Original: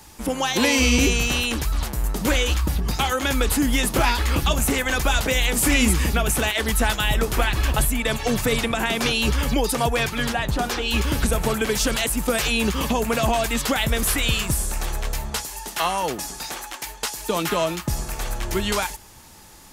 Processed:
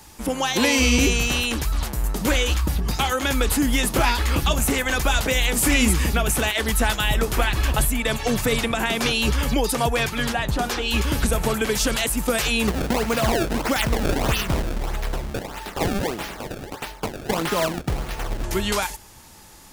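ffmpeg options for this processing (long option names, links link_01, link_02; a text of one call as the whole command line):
ffmpeg -i in.wav -filter_complex "[0:a]asettb=1/sr,asplit=3[link_01][link_02][link_03];[link_01]atrim=end=12.674[link_04];[link_02]atrim=start=12.67:end=18.44,asetpts=PTS-STARTPTS,afade=type=in:duration=0.004:curve=qsin,afade=type=out:start_time=5.766:duration=0.004:curve=qsin,acrusher=samples=25:mix=1:aa=0.000001:lfo=1:lforange=40:lforate=1.6[link_05];[link_03]atrim=start=18.436[link_06];[link_04][link_05]acrossfade=duration=0.004:curve1=hsin:curve2=qsin[link_07];[link_07][link_06]acrossfade=duration=0.004:curve1=qsin:curve2=hsin" out.wav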